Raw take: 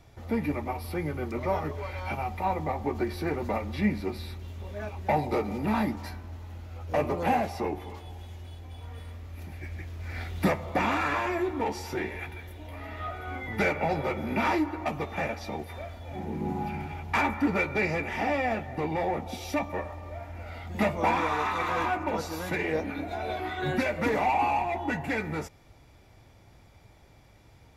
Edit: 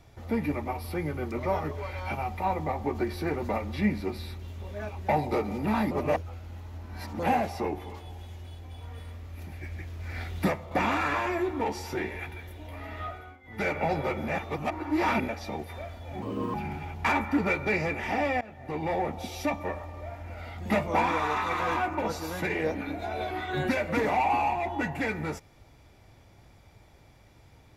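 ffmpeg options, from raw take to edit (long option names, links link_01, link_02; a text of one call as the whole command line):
ffmpeg -i in.wav -filter_complex "[0:a]asplit=11[link_01][link_02][link_03][link_04][link_05][link_06][link_07][link_08][link_09][link_10][link_11];[link_01]atrim=end=5.912[link_12];[link_02]atrim=start=5.908:end=7.192,asetpts=PTS-STARTPTS,areverse[link_13];[link_03]atrim=start=7.188:end=10.71,asetpts=PTS-STARTPTS,afade=type=out:start_time=3.172:duration=0.35:silence=0.446684[link_14];[link_04]atrim=start=10.71:end=13.37,asetpts=PTS-STARTPTS,afade=type=in:duration=0.004:curve=hsin:silence=0.446684,afade=type=out:start_time=2.31:duration=0.35:silence=0.112202[link_15];[link_05]atrim=start=13.37:end=13.43,asetpts=PTS-STARTPTS,volume=-19dB[link_16];[link_06]atrim=start=13.43:end=14.282,asetpts=PTS-STARTPTS,afade=type=in:duration=0.35:silence=0.112202[link_17];[link_07]atrim=start=14.278:end=15.282,asetpts=PTS-STARTPTS,areverse[link_18];[link_08]atrim=start=15.278:end=16.224[link_19];[link_09]atrim=start=16.22:end=16.63,asetpts=PTS-STARTPTS,asetrate=56448,aresample=44100[link_20];[link_10]atrim=start=16.626:end=18.5,asetpts=PTS-STARTPTS,afade=type=out:start_time=1.87:duration=0.004:curve=hsin:silence=0.0749894[link_21];[link_11]atrim=start=18.5,asetpts=PTS-STARTPTS,afade=type=in:duration=0.49:silence=0.0749894[link_22];[link_12][link_13]acrossfade=duration=0.004:curve1=hsin:curve2=hsin[link_23];[link_14][link_15][link_16][link_17]concat=n=4:v=0:a=1[link_24];[link_23][link_24]acrossfade=duration=0.004:curve1=hsin:curve2=hsin[link_25];[link_25][link_18]acrossfade=duration=0.004:curve1=hsin:curve2=hsin[link_26];[link_26][link_19]acrossfade=duration=0.004:curve1=hsin:curve2=hsin[link_27];[link_27][link_20]acrossfade=duration=0.004:curve1=hsin:curve2=hsin[link_28];[link_21][link_22]concat=n=2:v=0:a=1[link_29];[link_28][link_29]acrossfade=duration=0.004:curve1=hsin:curve2=hsin" out.wav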